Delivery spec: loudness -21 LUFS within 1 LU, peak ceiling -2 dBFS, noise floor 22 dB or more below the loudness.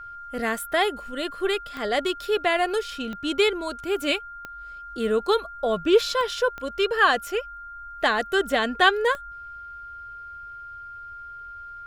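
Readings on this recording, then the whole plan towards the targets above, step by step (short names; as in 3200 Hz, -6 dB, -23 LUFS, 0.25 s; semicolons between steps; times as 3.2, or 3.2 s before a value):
clicks 6; steady tone 1400 Hz; tone level -37 dBFS; loudness -24.0 LUFS; peak -5.5 dBFS; loudness target -21.0 LUFS
-> de-click; notch 1400 Hz, Q 30; gain +3 dB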